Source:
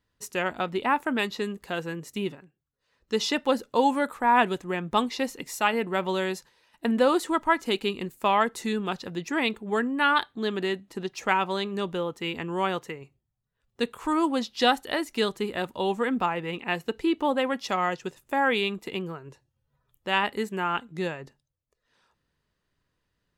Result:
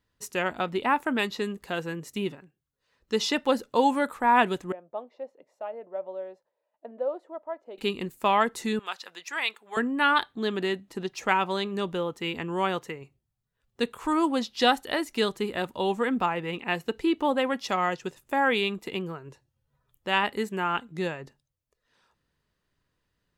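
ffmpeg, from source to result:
-filter_complex "[0:a]asettb=1/sr,asplit=3[s0][s1][s2];[s0]atrim=end=4.724[s3];[s1]atrim=start=4.72:end=7.78,asetpts=PTS-STARTPTS,afade=t=in:d=0.004:c=qsin,afade=t=out:st=3.056:d=0.004:c=qsin,bandpass=f=600:t=q:w=7.2[s4];[s2]atrim=start=7.776[s5];[s3][s4]acrossfade=d=0.004:c1=hsin:c2=qsin[s6];[s6][s5]acrossfade=d=0.004:c1=qsin:c2=hsin,asettb=1/sr,asplit=3[s7][s8][s9];[s7]atrim=end=8.794[s10];[s8]atrim=start=8.79:end=9.77,asetpts=PTS-STARTPTS,afade=t=in:d=0.004:c=qsin,afade=t=out:st=0.976:d=0.004:c=qsin,highpass=1000[s11];[s9]atrim=start=9.766[s12];[s10][s11]acrossfade=d=0.004:c1=hsin:c2=qsin[s13];[s13][s12]acrossfade=d=0.004:c1=qsin:c2=hsin"

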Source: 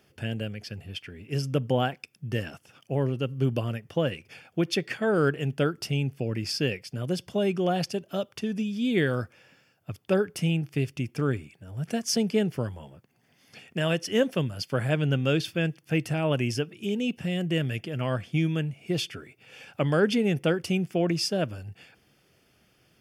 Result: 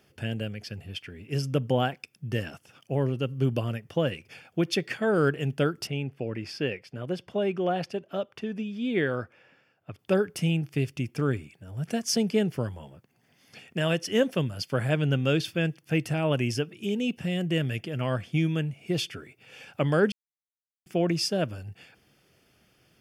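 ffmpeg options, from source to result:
-filter_complex "[0:a]asettb=1/sr,asplit=3[s0][s1][s2];[s0]atrim=end=5.874[s3];[s1]atrim=start=5.87:end=9.99,asetpts=PTS-STARTPTS,afade=t=in:d=0.004:c=qsin,afade=t=out:st=4.116:d=0.004:c=qsin,bass=f=250:g=-6,treble=f=4000:g=-14[s4];[s2]atrim=start=9.986[s5];[s3][s4]acrossfade=d=0.004:c1=hsin:c2=qsin[s6];[s6][s5]acrossfade=d=0.004:c1=qsin:c2=hsin,asplit=3[s7][s8][s9];[s7]atrim=end=20.12,asetpts=PTS-STARTPTS,afade=t=out:st=20.116:d=0.004:c=hsin[s10];[s8]atrim=start=20.12:end=20.86,asetpts=PTS-STARTPTS,volume=0[s11];[s9]atrim=start=20.86,asetpts=PTS-STARTPTS,afade=t=in:d=0.004:c=hsin[s12];[s10][s11][s12]concat=n=3:v=0:a=1"

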